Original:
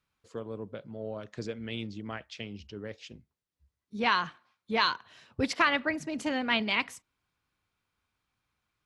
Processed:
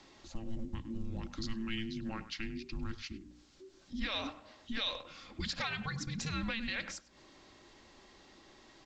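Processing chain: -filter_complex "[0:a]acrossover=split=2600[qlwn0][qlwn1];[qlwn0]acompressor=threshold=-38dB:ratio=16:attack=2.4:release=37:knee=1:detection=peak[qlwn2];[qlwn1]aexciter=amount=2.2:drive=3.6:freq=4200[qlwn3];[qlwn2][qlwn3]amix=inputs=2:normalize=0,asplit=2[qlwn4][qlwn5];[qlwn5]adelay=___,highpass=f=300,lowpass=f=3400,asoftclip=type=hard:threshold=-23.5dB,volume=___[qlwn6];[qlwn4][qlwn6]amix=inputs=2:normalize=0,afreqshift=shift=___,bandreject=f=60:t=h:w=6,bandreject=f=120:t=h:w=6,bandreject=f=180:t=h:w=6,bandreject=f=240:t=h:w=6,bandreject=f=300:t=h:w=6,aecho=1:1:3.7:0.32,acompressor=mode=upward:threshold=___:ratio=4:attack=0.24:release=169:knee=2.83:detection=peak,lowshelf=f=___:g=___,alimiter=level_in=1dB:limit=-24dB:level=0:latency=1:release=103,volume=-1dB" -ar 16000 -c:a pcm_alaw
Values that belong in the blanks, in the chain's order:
100, -14dB, -450, -44dB, 190, 7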